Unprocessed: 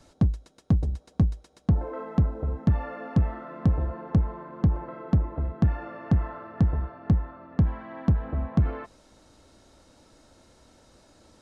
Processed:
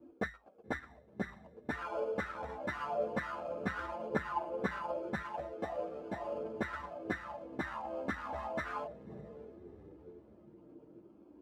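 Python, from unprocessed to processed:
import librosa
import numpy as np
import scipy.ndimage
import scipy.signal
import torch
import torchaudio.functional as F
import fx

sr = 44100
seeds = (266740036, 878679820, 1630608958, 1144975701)

y = fx.level_steps(x, sr, step_db=20, at=(0.78, 1.26))
y = fx.echo_diffused(y, sr, ms=578, feedback_pct=48, wet_db=-14)
y = fx.sample_hold(y, sr, seeds[0], rate_hz=1900.0, jitter_pct=0)
y = fx.low_shelf(y, sr, hz=230.0, db=-10.0, at=(5.21, 6.32))
y = fx.auto_wah(y, sr, base_hz=330.0, top_hz=1400.0, q=4.6, full_db=-19.5, direction='up')
y = fx.chorus_voices(y, sr, voices=4, hz=0.29, base_ms=12, depth_ms=3.4, mix_pct=60)
y = y * 10.0 ** (11.0 / 20.0)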